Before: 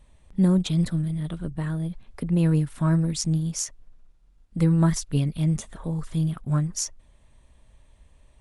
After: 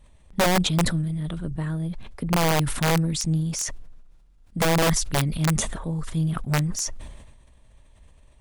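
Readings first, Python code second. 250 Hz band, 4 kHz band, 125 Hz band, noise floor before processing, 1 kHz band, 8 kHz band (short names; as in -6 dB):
-2.5 dB, +8.5 dB, -1.5 dB, -58 dBFS, +11.5 dB, +4.5 dB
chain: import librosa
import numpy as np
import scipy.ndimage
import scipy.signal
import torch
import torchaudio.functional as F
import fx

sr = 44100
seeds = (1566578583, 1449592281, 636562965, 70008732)

y = (np.mod(10.0 ** (15.0 / 20.0) * x + 1.0, 2.0) - 1.0) / 10.0 ** (15.0 / 20.0)
y = fx.sustainer(y, sr, db_per_s=44.0)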